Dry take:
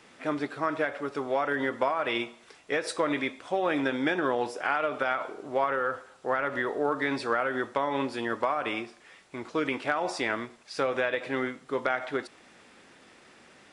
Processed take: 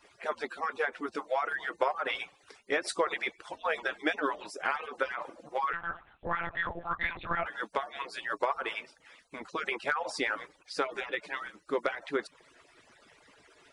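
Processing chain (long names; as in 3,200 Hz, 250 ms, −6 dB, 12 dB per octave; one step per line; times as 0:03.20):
harmonic-percussive split with one part muted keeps percussive
0:05.73–0:07.46: one-pitch LPC vocoder at 8 kHz 170 Hz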